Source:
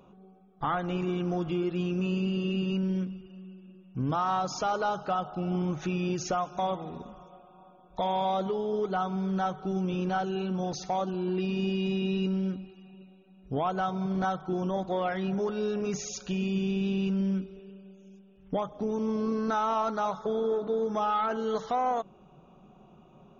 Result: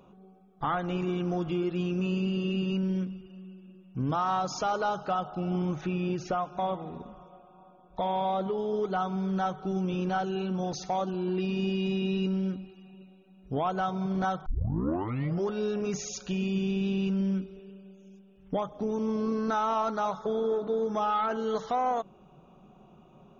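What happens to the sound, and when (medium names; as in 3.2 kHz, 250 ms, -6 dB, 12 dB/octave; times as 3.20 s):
5.81–8.58 s: distance through air 170 m
14.46 s: tape start 1.02 s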